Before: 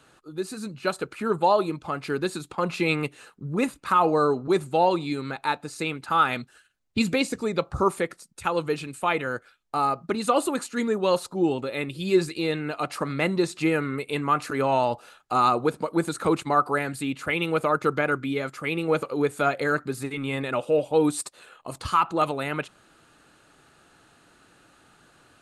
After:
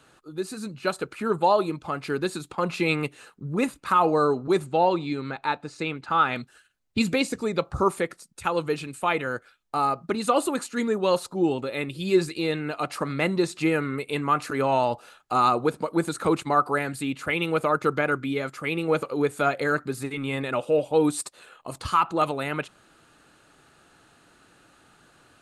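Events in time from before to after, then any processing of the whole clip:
4.66–6.36 air absorption 89 m

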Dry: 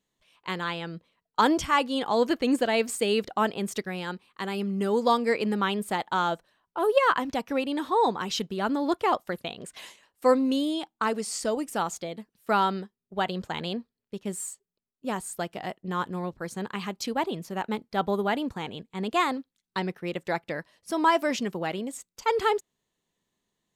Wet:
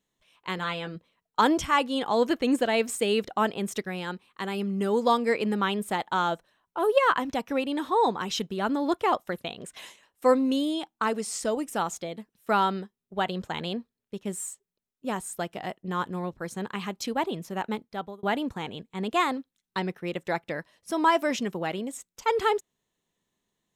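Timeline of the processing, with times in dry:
0.56–0.96 doubler 16 ms -6.5 dB
17.68–18.23 fade out
whole clip: notch 4600 Hz, Q 11

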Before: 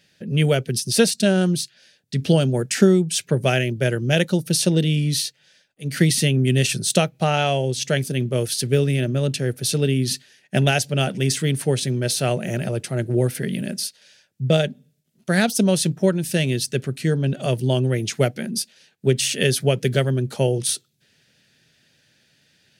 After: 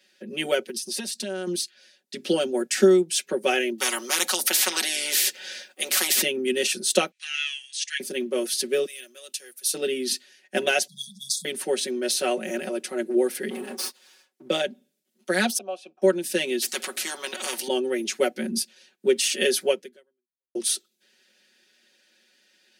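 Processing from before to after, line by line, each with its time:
0.61–1.47 compressor, threshold -24 dBFS
3.78–6.22 spectral compressor 10:1
7.11–8 Chebyshev band-pass 1700–9500 Hz, order 4
8.85–9.74 differentiator
10.87–11.45 brick-wall FIR band-stop 200–3300 Hz
13.5–14.48 minimum comb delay 7.7 ms
15.58–16.02 vowel filter a
16.62–17.68 spectral compressor 4:1
18.35–19.07 low shelf 190 Hz +11.5 dB
19.71–20.55 fade out exponential
whole clip: steep high-pass 230 Hz 48 dB/oct; notch 670 Hz, Q 12; comb 5.4 ms, depth 89%; gain -4 dB

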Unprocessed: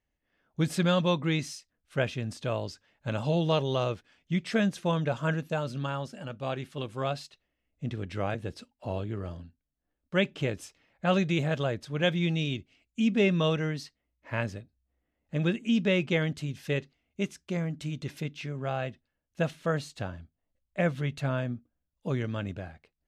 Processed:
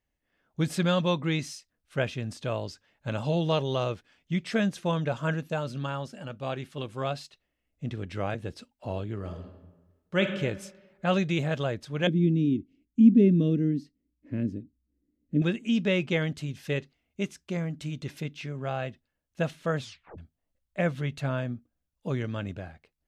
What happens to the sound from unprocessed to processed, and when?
9.16–10.32 reverb throw, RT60 1.2 s, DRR 5 dB
12.07–15.42 EQ curve 130 Hz 0 dB, 290 Hz +13 dB, 900 Hz -26 dB, 1900 Hz -16 dB
19.78 tape stop 0.40 s

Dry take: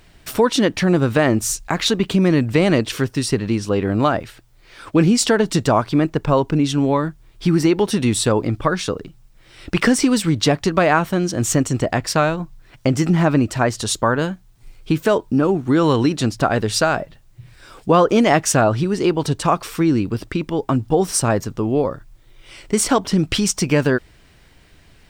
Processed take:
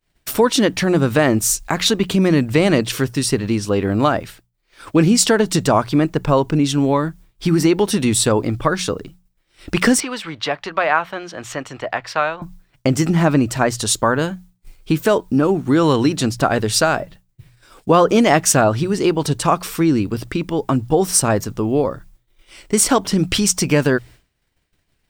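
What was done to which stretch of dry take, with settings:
10–12.42 three-band isolator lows -17 dB, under 570 Hz, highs -23 dB, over 3800 Hz
whole clip: expander -36 dBFS; high shelf 8000 Hz +7.5 dB; notches 60/120/180 Hz; gain +1 dB

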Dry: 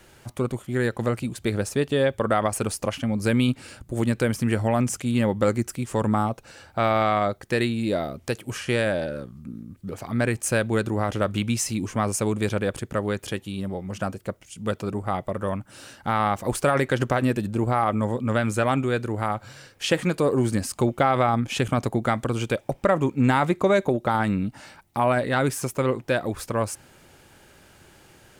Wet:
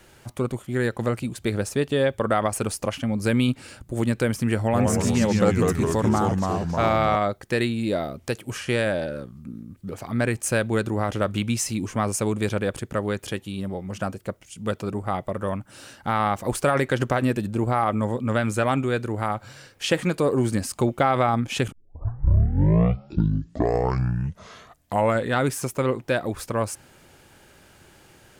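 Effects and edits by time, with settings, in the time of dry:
4.63–7.16 echoes that change speed 0.102 s, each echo -2 st, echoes 3
21.72 tape start 3.76 s

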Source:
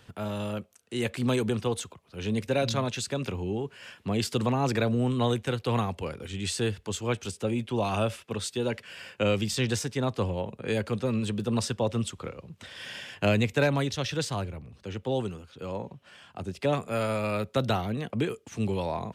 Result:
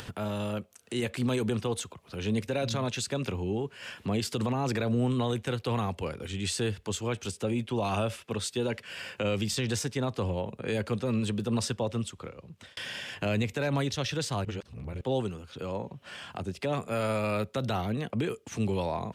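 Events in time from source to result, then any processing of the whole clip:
11.69–12.77 fade out
14.45–15.01 reverse
whole clip: limiter -20.5 dBFS; upward compressor, threshold -33 dBFS

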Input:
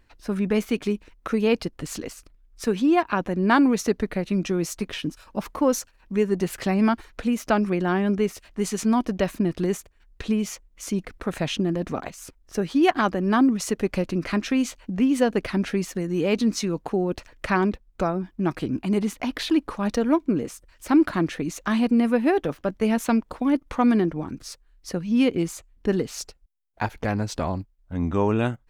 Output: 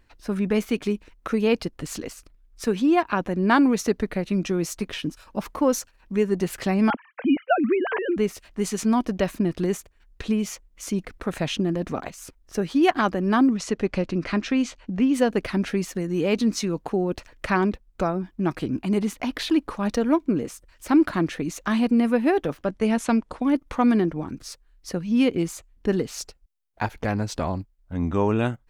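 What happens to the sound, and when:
6.9–8.17 sine-wave speech
13.54–15.14 LPF 6200 Hz
22.64–23.47 steep low-pass 11000 Hz

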